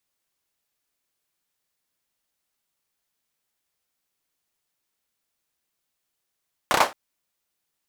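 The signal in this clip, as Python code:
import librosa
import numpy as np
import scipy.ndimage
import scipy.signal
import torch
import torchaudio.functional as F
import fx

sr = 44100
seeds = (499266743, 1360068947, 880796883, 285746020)

y = fx.drum_clap(sr, seeds[0], length_s=0.22, bursts=4, spacing_ms=31, hz=800.0, decay_s=0.23)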